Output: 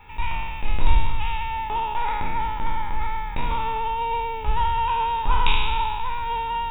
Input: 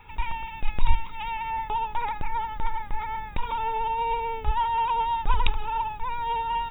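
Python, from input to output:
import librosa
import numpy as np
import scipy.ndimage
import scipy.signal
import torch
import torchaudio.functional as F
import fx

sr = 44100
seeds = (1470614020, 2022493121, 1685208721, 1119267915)

y = fx.spec_trails(x, sr, decay_s=1.75)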